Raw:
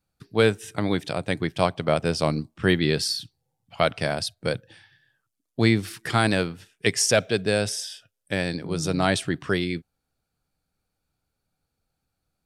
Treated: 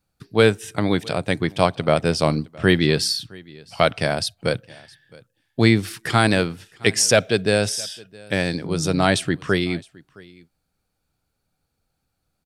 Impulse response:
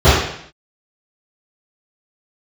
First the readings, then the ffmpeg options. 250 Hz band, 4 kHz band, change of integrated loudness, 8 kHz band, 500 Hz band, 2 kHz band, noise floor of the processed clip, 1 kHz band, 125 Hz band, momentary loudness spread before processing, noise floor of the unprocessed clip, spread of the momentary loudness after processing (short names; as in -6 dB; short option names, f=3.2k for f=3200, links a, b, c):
+4.0 dB, +4.0 dB, +4.0 dB, +4.0 dB, +4.0 dB, +4.0 dB, -76 dBFS, +4.0 dB, +4.0 dB, 9 LU, -81 dBFS, 9 LU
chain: -af "aecho=1:1:665:0.0631,volume=4dB"